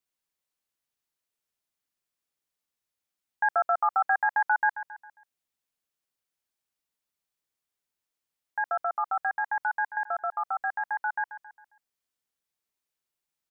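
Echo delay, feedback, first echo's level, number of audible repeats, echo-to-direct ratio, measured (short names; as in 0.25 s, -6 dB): 0.135 s, 45%, -13.5 dB, 4, -12.5 dB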